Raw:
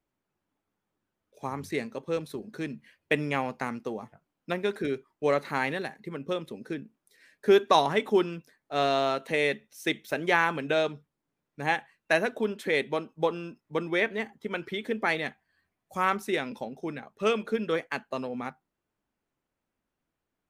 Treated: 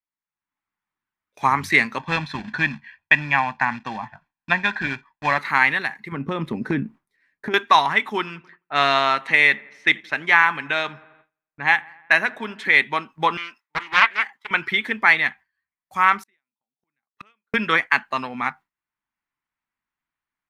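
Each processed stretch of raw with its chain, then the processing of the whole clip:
1.99–5.38 s: short-mantissa float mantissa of 2-bit + distance through air 140 m + comb 1.2 ms, depth 70%
6.12–7.54 s: tilt shelf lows +9 dB, about 920 Hz + compression, threshold -25 dBFS
8.18–12.65 s: level-controlled noise filter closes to 1.3 kHz, open at -26 dBFS + feedback echo behind a low-pass 86 ms, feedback 59%, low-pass 1.7 kHz, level -21.5 dB
13.37–14.51 s: Bessel high-pass 880 Hz + loudspeaker Doppler distortion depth 0.46 ms
16.23–17.54 s: compression, threshold -28 dBFS + inverted gate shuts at -35 dBFS, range -38 dB
whole clip: gate with hold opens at -47 dBFS; ten-band graphic EQ 500 Hz -10 dB, 1 kHz +10 dB, 2 kHz +12 dB, 4 kHz +4 dB; level rider; trim -1 dB

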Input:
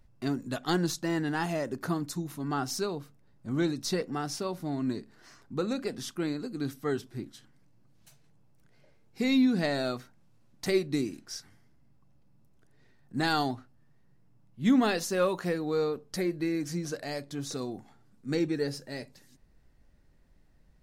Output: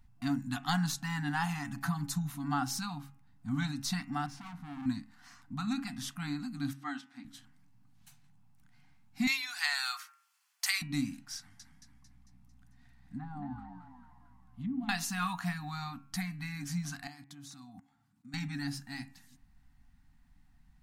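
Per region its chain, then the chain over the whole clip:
1.64–2.30 s: comb 6 ms, depth 93% + compression, threshold -26 dBFS
4.26–4.86 s: low-pass 1.3 kHz 6 dB/octave + hard clipper -40 dBFS
6.73–7.25 s: high-pass 290 Hz 24 dB/octave + distance through air 74 m
9.27–10.82 s: high-pass 1 kHz 24 dB/octave + treble shelf 2 kHz +10 dB + band-stop 3.8 kHz
11.37–14.89 s: low-pass that closes with the level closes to 440 Hz, closed at -24 dBFS + compression 2.5:1, threshold -38 dBFS + frequency-shifting echo 224 ms, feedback 51%, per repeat +61 Hz, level -5 dB
17.07–18.34 s: high-pass 95 Hz + level held to a coarse grid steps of 24 dB
whole clip: FFT band-reject 300–690 Hz; peaking EQ 5.2 kHz -3 dB 0.6 oct; de-hum 137.2 Hz, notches 21

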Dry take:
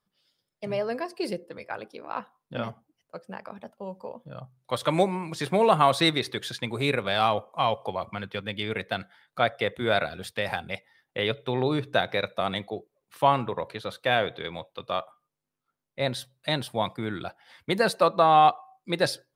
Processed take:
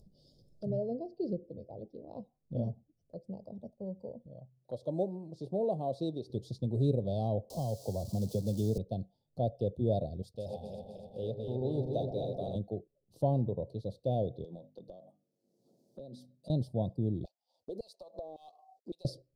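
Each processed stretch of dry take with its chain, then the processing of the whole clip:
0.70–2.07 s: distance through air 210 m + band-stop 1.1 kHz, Q 6.8
4.26–6.30 s: high-pass 560 Hz 6 dB/octave + treble shelf 3.2 kHz -10 dB
7.50–8.78 s: zero-crossing glitches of -19.5 dBFS + three bands compressed up and down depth 100%
10.22–12.56 s: backward echo that repeats 126 ms, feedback 76%, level -5 dB + bass shelf 400 Hz -10.5 dB + echo whose repeats swap between lows and highs 121 ms, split 990 Hz, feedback 51%, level -10 dB
14.44–16.50 s: high-pass 170 Hz 24 dB/octave + hum notches 50/100/150/200/250/300 Hz + compression 16:1, threshold -36 dBFS
17.25–19.05 s: companding laws mixed up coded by A + LFO high-pass saw down 1.8 Hz 340–2400 Hz + compression 12:1, threshold -30 dBFS
whole clip: Chebyshev band-stop 630–4500 Hz, order 3; RIAA curve playback; upward compressor, threshold -38 dBFS; trim -7.5 dB

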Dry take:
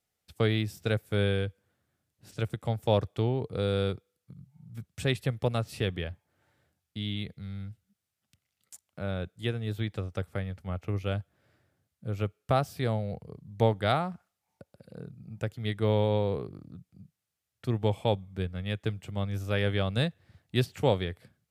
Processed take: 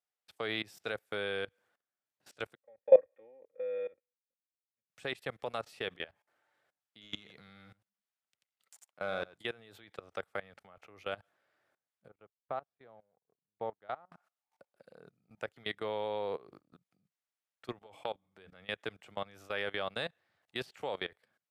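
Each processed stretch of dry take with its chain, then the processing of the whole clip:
2.55–4.90 s: cascade formant filter e + comb 3.7 ms, depth 70% + three bands expanded up and down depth 100%
7.01–9.38 s: waveshaping leveller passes 1 + delay 88 ms -10.5 dB
12.08–14.12 s: companding laws mixed up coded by A + tape spacing loss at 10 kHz 37 dB + upward expansion 2.5:1, over -37 dBFS
17.80–18.56 s: expander -46 dBFS + hum notches 60/120/180/240/300 Hz + compression 3:1, threshold -32 dBFS
whole clip: high-pass 860 Hz 12 dB/octave; tilt EQ -3 dB/octave; level held to a coarse grid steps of 21 dB; trim +6.5 dB

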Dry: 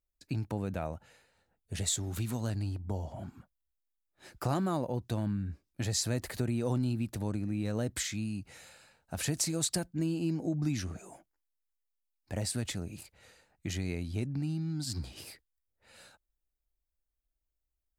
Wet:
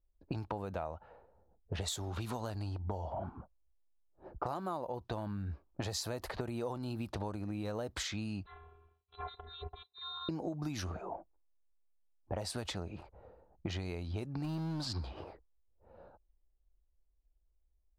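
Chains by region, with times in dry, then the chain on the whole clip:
8.46–10.29 s: compression, threshold -35 dBFS + robot voice 327 Hz + frequency inversion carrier 4 kHz
14.44–14.88 s: jump at every zero crossing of -42.5 dBFS + treble shelf 7.2 kHz -5 dB
whole clip: level-controlled noise filter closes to 370 Hz, open at -29 dBFS; graphic EQ 125/250/1000/2000/8000 Hz -10/-8/+6/-8/-11 dB; compression 12:1, threshold -47 dBFS; trim +12.5 dB

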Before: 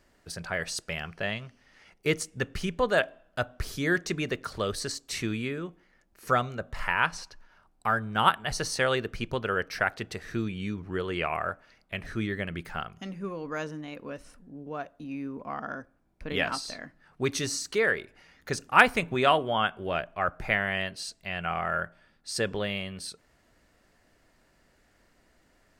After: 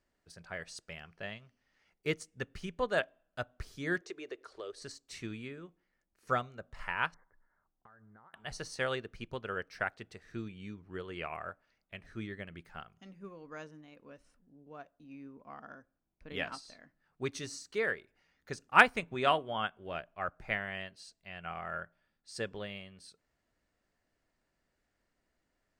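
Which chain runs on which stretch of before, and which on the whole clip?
4.01–4.82 s: low-pass 9.1 kHz + resonant low shelf 260 Hz -12.5 dB, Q 3 + compression 2:1, threshold -32 dBFS
7.14–8.34 s: Chebyshev low-pass 2.1 kHz, order 8 + compression 20:1, threshold -39 dBFS
whole clip: peaking EQ 12 kHz -12.5 dB 0.25 oct; upward expansion 1.5:1, over -40 dBFS; trim -2.5 dB

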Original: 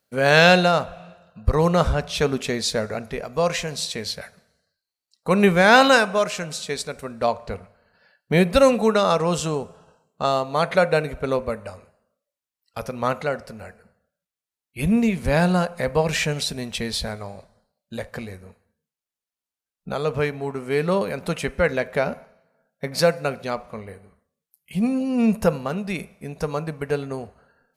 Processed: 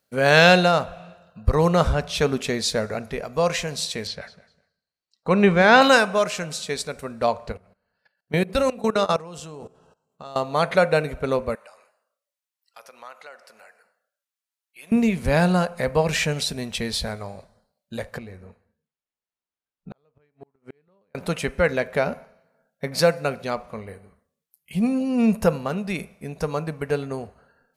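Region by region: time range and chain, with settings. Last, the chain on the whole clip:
4.07–5.82 s: distance through air 94 m + feedback delay 201 ms, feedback 20%, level -19 dB
7.52–10.36 s: de-hum 63.7 Hz, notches 13 + level held to a coarse grid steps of 19 dB
11.55–14.92 s: high-pass 790 Hz + compression 2:1, threshold -49 dBFS
18.18–21.15 s: low-pass 2.5 kHz 6 dB/octave + inverted gate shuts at -19 dBFS, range -42 dB + compression 2:1, threshold -38 dBFS
whole clip: none

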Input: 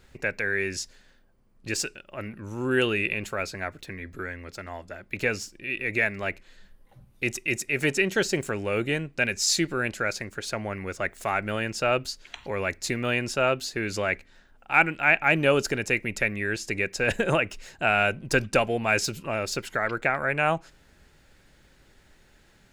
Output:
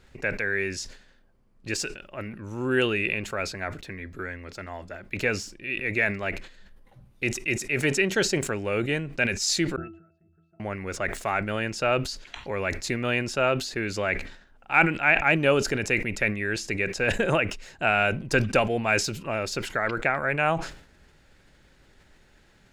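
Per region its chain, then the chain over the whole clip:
9.76–10.60 s: compression 5:1, threshold -38 dBFS + treble shelf 2.2 kHz -10.5 dB + pitch-class resonator E, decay 0.46 s
whole clip: treble shelf 10 kHz -9 dB; decay stretcher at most 99 dB/s

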